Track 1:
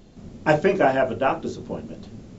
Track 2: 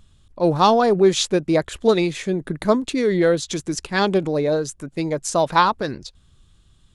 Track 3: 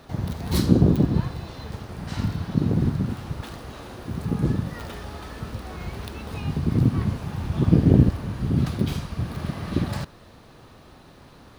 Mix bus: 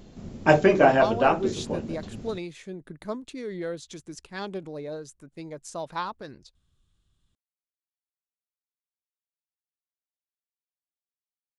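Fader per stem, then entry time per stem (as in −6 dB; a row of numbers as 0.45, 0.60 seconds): +1.0 dB, −15.5 dB, muted; 0.00 s, 0.40 s, muted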